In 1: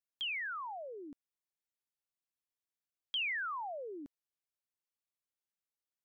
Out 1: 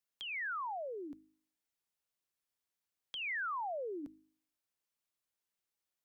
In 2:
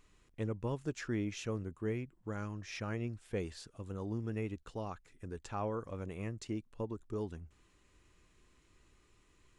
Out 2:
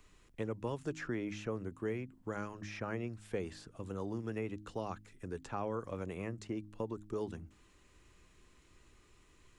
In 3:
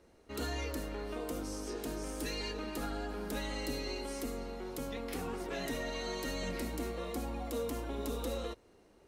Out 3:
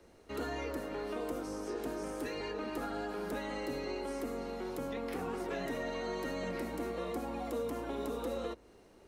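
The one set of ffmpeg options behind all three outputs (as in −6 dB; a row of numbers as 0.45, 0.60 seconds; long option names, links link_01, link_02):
-filter_complex "[0:a]bandreject=frequency=52.28:width_type=h:width=4,bandreject=frequency=104.56:width_type=h:width=4,bandreject=frequency=156.84:width_type=h:width=4,bandreject=frequency=209.12:width_type=h:width=4,bandreject=frequency=261.4:width_type=h:width=4,bandreject=frequency=313.68:width_type=h:width=4,acrossover=split=110|380|2100[link_01][link_02][link_03][link_04];[link_01]acompressor=threshold=-58dB:ratio=4[link_05];[link_02]acompressor=threshold=-44dB:ratio=4[link_06];[link_03]acompressor=threshold=-40dB:ratio=4[link_07];[link_04]acompressor=threshold=-58dB:ratio=4[link_08];[link_05][link_06][link_07][link_08]amix=inputs=4:normalize=0,volume=3.5dB"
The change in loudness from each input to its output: −1.5, −0.5, +0.5 LU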